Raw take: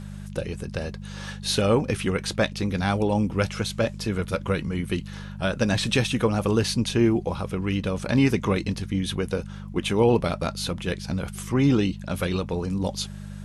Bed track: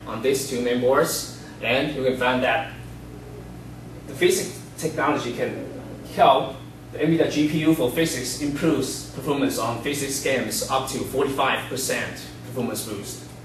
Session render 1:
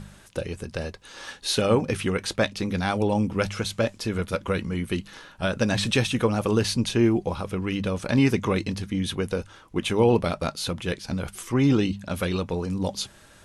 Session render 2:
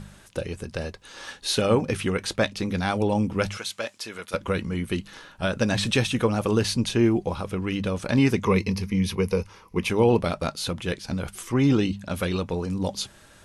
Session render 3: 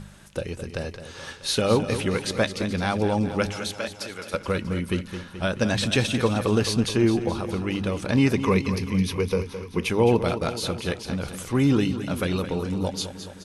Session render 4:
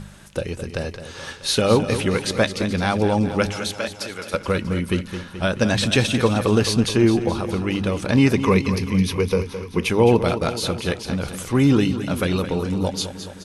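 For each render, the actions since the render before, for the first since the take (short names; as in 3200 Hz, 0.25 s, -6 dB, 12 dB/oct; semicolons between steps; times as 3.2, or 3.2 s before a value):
de-hum 50 Hz, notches 4
3.57–4.34 HPF 1200 Hz 6 dB/oct; 8.45–9.9 ripple EQ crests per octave 0.84, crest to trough 10 dB
feedback echo 0.214 s, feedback 60%, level -11 dB
gain +4 dB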